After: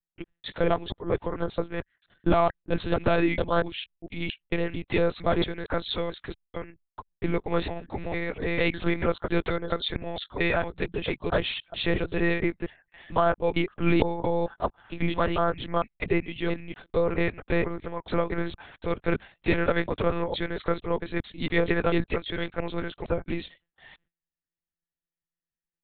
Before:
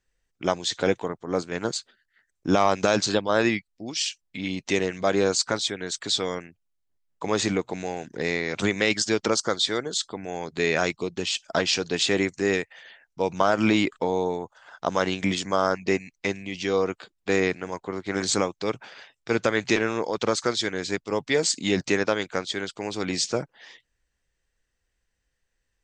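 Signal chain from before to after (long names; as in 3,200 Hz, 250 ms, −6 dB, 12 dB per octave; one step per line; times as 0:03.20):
slices reordered back to front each 226 ms, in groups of 2
noise gate with hold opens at −48 dBFS
high-shelf EQ 2,100 Hz −5.5 dB
one-pitch LPC vocoder at 8 kHz 170 Hz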